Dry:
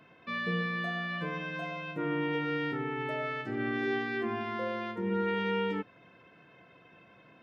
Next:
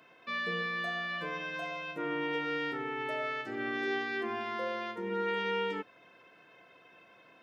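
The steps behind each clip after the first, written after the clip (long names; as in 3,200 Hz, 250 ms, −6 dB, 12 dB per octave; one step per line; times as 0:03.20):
bass and treble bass −13 dB, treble +6 dB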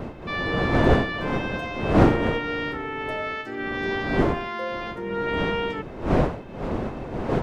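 wind on the microphone 470 Hz −31 dBFS
level +5.5 dB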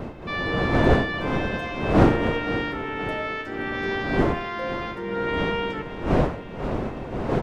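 repeating echo 524 ms, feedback 55%, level −14 dB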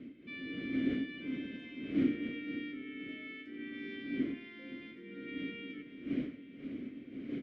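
formant filter i
level −4 dB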